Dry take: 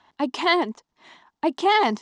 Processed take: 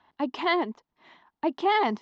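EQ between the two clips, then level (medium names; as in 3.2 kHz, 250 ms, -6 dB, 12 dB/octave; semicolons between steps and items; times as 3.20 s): distance through air 180 m; -3.5 dB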